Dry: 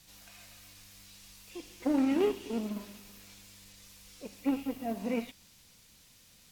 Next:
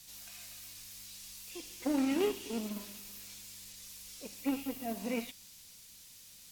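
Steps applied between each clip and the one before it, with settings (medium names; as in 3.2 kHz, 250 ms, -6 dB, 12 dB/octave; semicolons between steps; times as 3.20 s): treble shelf 3.1 kHz +11.5 dB; trim -3.5 dB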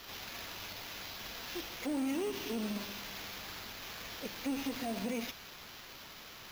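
peak limiter -32.5 dBFS, peak gain reduction 12 dB; sample-and-hold 5×; trim +4.5 dB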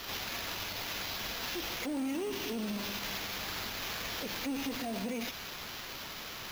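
peak limiter -36.5 dBFS, peak gain reduction 8.5 dB; trim +7.5 dB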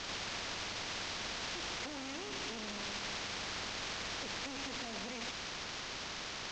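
CVSD coder 32 kbps; spectrum-flattening compressor 2:1; trim -1 dB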